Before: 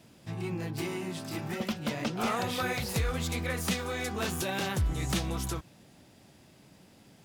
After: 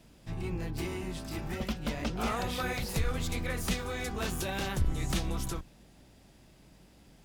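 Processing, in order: octave divider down 2 oct, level 0 dB; trim -2.5 dB

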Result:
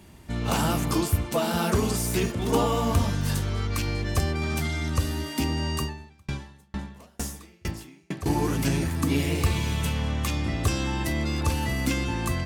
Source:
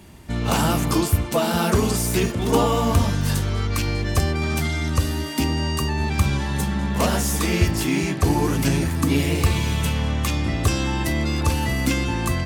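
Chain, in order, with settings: 5.83–8.26 s: sawtooth tremolo in dB decaying 2.2 Hz, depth 40 dB; trim -4.5 dB

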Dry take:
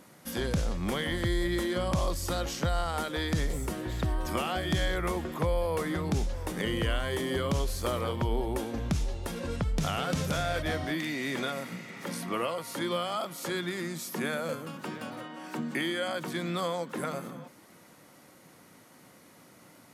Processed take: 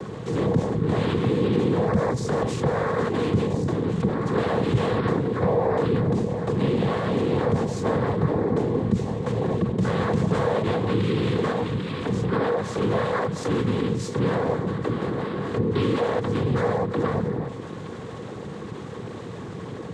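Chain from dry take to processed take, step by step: octave divider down 1 oct, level -1 dB; peaking EQ 4.8 kHz -13 dB 0.84 oct; noise-vocoded speech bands 6; bass shelf 380 Hz +11 dB; small resonant body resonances 480/1100 Hz, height 11 dB, ringing for 45 ms; level flattener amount 50%; trim -4 dB

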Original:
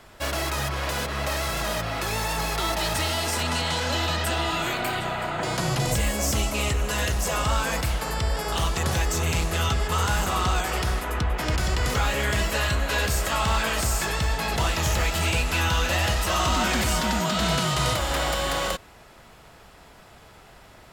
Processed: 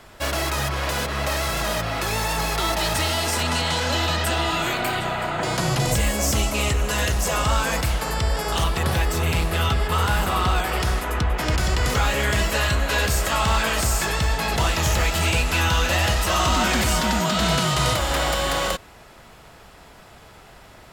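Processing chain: 8.64–10.80 s: peaking EQ 6.6 kHz -9.5 dB 0.56 oct; trim +3 dB

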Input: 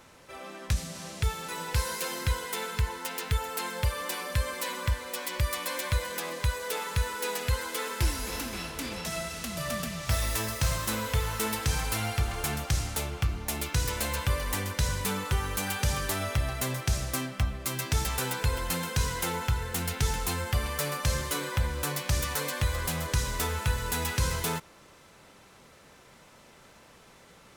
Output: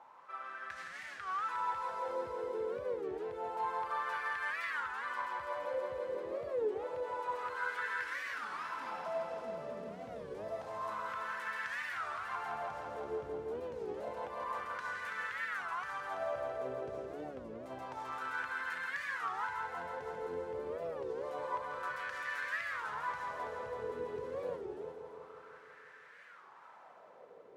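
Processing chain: high-pass 72 Hz; peak limiter -27.5 dBFS, peak gain reduction 10.5 dB; wah-wah 0.28 Hz 410–1700 Hz, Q 5.8; on a send: multi-head delay 166 ms, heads first and second, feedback 57%, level -7.5 dB; on the sum: warped record 33 1/3 rpm, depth 250 cents; trim +7.5 dB

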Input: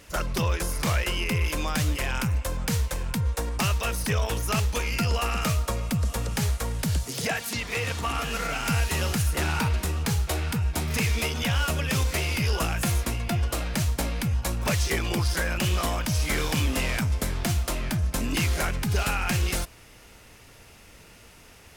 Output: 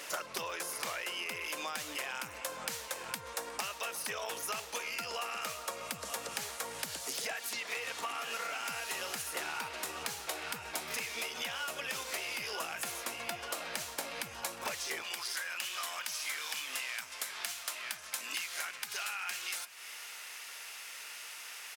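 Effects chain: high-pass 530 Hz 12 dB/octave, from 15.02 s 1.3 kHz; compression 8:1, threshold -44 dBFS, peak gain reduction 19 dB; echo from a far wall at 62 m, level -16 dB; trim +8 dB

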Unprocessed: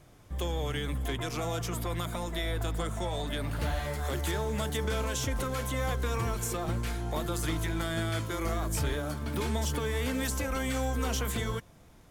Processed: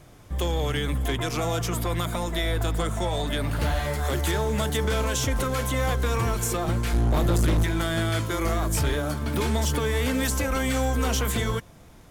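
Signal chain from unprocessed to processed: 6.93–7.64 s: bass shelf 390 Hz +10.5 dB; hard clipper -24.5 dBFS, distortion -12 dB; trim +6.5 dB

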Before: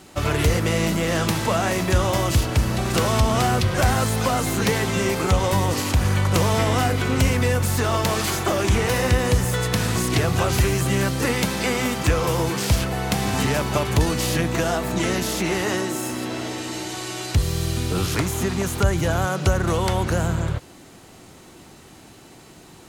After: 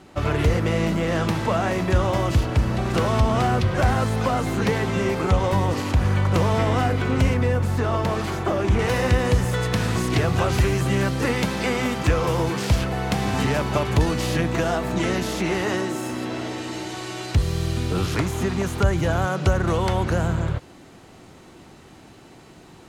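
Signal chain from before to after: low-pass 2.1 kHz 6 dB/octave, from 7.34 s 1.3 kHz, from 8.79 s 3.5 kHz

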